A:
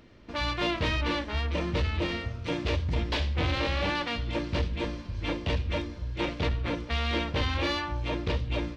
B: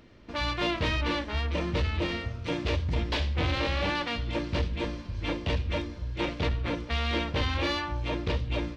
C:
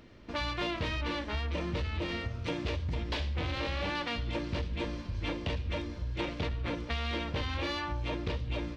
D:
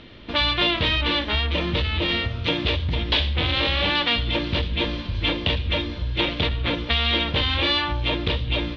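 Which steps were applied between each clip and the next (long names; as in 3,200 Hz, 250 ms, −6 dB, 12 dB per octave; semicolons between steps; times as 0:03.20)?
no processing that can be heard
downward compressor, threshold −30 dBFS, peak gain reduction 7.5 dB
low-pass with resonance 3,500 Hz, resonance Q 3.6; level +9 dB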